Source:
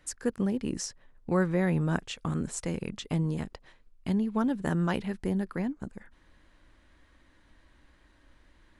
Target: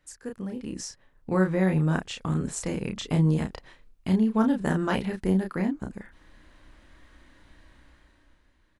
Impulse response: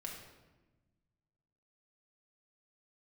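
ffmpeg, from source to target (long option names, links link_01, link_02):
-filter_complex "[0:a]dynaudnorm=framelen=140:gausssize=13:maxgain=13dB,asplit=2[link_01][link_02];[link_02]adelay=32,volume=-4dB[link_03];[link_01][link_03]amix=inputs=2:normalize=0,volume=-8dB"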